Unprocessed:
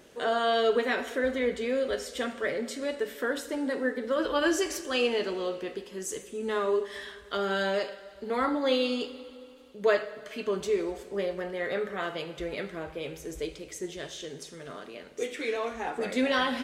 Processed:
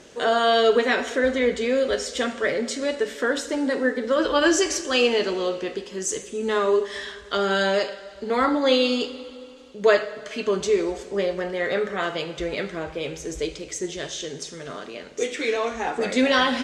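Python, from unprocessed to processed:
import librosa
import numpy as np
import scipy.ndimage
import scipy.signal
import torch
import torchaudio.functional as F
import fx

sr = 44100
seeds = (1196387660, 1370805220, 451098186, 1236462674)

y = fx.lowpass_res(x, sr, hz=6900.0, q=1.6)
y = y * 10.0 ** (6.5 / 20.0)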